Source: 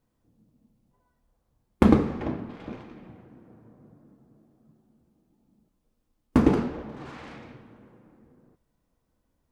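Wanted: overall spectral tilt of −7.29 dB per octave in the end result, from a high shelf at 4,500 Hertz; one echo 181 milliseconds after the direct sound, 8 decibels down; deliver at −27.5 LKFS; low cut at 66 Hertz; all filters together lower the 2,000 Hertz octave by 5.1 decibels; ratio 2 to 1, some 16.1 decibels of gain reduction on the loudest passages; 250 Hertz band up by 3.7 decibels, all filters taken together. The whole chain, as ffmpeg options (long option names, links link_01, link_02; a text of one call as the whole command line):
ffmpeg -i in.wav -af "highpass=66,equalizer=frequency=250:width_type=o:gain=4.5,equalizer=frequency=2000:width_type=o:gain=-6,highshelf=frequency=4500:gain=-4,acompressor=threshold=-42dB:ratio=2,aecho=1:1:181:0.398,volume=12dB" out.wav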